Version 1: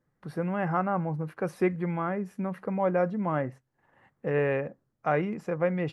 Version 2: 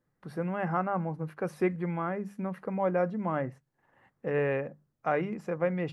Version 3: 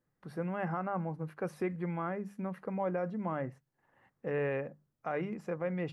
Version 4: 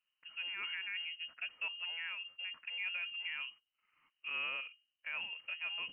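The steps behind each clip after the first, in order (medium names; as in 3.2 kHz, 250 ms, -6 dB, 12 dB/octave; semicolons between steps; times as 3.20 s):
hum notches 50/100/150/200 Hz; trim -2 dB
peak limiter -21 dBFS, peak gain reduction 6 dB; trim -3.5 dB
frequency inversion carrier 3 kHz; trim -6.5 dB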